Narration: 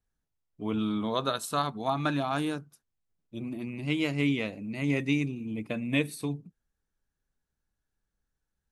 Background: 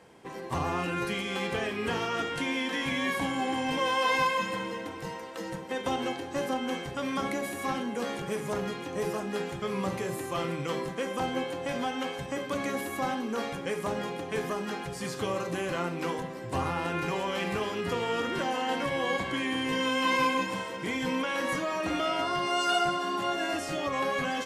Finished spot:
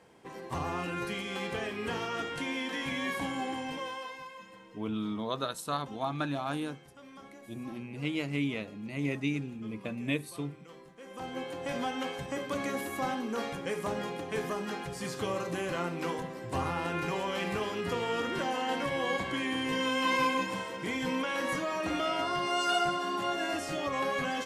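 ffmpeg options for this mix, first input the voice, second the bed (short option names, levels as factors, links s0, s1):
-filter_complex "[0:a]adelay=4150,volume=0.596[s0];[1:a]volume=4.73,afade=t=out:st=3.38:d=0.77:silence=0.16788,afade=t=in:st=10.98:d=0.77:silence=0.133352[s1];[s0][s1]amix=inputs=2:normalize=0"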